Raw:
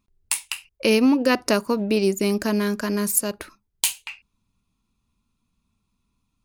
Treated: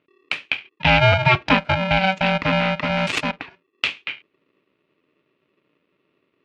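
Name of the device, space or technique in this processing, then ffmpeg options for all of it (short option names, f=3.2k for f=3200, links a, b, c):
ring modulator pedal into a guitar cabinet: -filter_complex "[0:a]asettb=1/sr,asplit=3[a][b][c];[a]atrim=end=2.874[d];[b]atrim=start=2.87:end=3.3,asetpts=PTS-STARTPTS,afade=t=in:d=0.004:c=qsin,afade=t=out:st=0.426:d=0.004:c=qsin,highshelf=f=5.5k:t=q:w=1.5:g=12[e];[c]atrim=start=3.296[f];[d][e]acrossfade=d=0.004:c1=hsin:c2=qsin[g];[g][f]acrossfade=d=0.004:c1=qsin:c2=hsin,aeval=exprs='val(0)*sgn(sin(2*PI*380*n/s))':c=same,highpass=76,equalizer=f=270:t=q:w=4:g=6,equalizer=f=690:t=q:w=4:g=-3,equalizer=f=2.5k:t=q:w=4:g=10,lowpass=f=3.6k:w=0.5412,lowpass=f=3.6k:w=1.3066,volume=2.5dB"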